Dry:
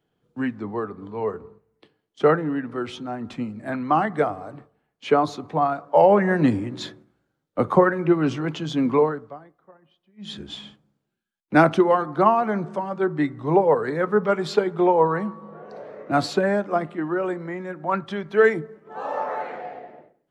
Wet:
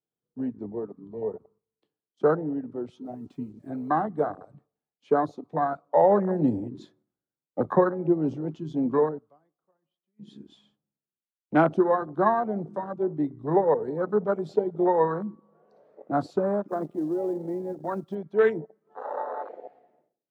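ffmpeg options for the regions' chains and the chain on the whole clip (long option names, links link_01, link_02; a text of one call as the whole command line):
ffmpeg -i in.wav -filter_complex "[0:a]asettb=1/sr,asplit=3[link_01][link_02][link_03];[link_01]atrim=end=3.054[link_04];[link_02]atrim=start=3.05:end=3.91,asetpts=PTS-STARTPTS,afade=type=in:duration=0.004:curve=qsin,afade=type=out:start_time=0.856:duration=0.004:curve=qsin,lowshelf=frequency=300:gain=-2,aecho=1:1:7:0.43,atrim=end_sample=37926,acrusher=bits=8:mix=0:aa=0.5[link_05];[link_03]atrim=start=3.906[link_06];[link_04][link_05]acrossfade=duration=0.004:curve1=hsin:curve2=qsin[link_07];[link_07][link_06]acrossfade=duration=0.004:curve1=qsin:curve2=hsin,asettb=1/sr,asplit=3[link_08][link_09][link_10];[link_08]atrim=end=16.684[link_11];[link_09]atrim=start=16.68:end=18.15,asetpts=PTS-STARTPTS,afade=type=in:duration=0.004:curve=qsin,afade=type=out:start_time=1.466:duration=0.004:curve=qsin,adynamicequalizer=threshold=0.0112:dfrequency=360:dqfactor=1.2:tfrequency=360:tqfactor=1.2:attack=5:release=100:ratio=0.375:range=3:mode=boostabove:tftype=bell,acompressor=threshold=-20dB:ratio=4:attack=3.2:release=140:knee=1:detection=peak,acrusher=bits=5:mode=log:mix=0:aa=0.000001[link_12];[link_10]atrim=start=18.146[link_13];[link_11][link_12]acrossfade=duration=0.004:curve1=hsin:curve2=qsin[link_14];[link_14][link_13]acrossfade=duration=0.004:curve1=qsin:curve2=hsin,equalizer=frequency=2000:width=1.1:gain=-7,afwtdn=0.0562,lowshelf=frequency=90:gain=-10,volume=-3dB" out.wav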